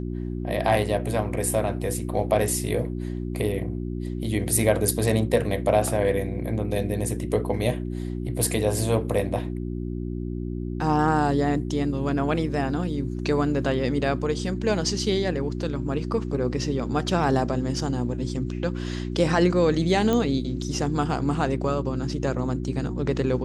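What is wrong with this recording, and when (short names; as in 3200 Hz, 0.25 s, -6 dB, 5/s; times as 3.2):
hum 60 Hz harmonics 6 -30 dBFS
20.13 pop -12 dBFS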